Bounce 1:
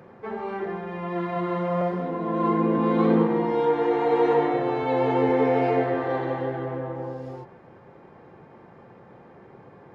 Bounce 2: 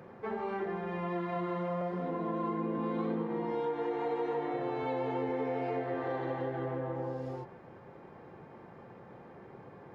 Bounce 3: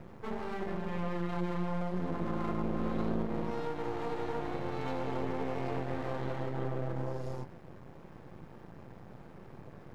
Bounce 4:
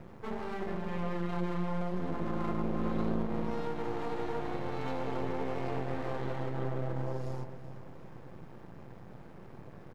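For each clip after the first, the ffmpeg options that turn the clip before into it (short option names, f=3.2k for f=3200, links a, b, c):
-af "acompressor=threshold=-29dB:ratio=5,volume=-2.5dB"
-af "bass=f=250:g=11,treble=f=4k:g=13,aeval=exprs='max(val(0),0)':c=same"
-af "aecho=1:1:377|754|1131|1508|1885:0.178|0.096|0.0519|0.028|0.0151"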